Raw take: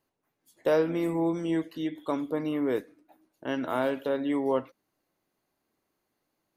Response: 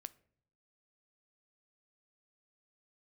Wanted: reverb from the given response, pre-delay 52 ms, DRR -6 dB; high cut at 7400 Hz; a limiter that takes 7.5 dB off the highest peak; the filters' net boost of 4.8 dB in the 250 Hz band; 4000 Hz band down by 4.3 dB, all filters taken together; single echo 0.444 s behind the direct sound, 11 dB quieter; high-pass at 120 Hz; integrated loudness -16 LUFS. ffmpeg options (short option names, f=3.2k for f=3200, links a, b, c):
-filter_complex "[0:a]highpass=120,lowpass=7.4k,equalizer=f=250:t=o:g=6.5,equalizer=f=4k:t=o:g=-6,alimiter=limit=-19.5dB:level=0:latency=1,aecho=1:1:444:0.282,asplit=2[a][b];[1:a]atrim=start_sample=2205,adelay=52[c];[b][c]afir=irnorm=-1:irlink=0,volume=11.5dB[d];[a][d]amix=inputs=2:normalize=0,volume=5dB"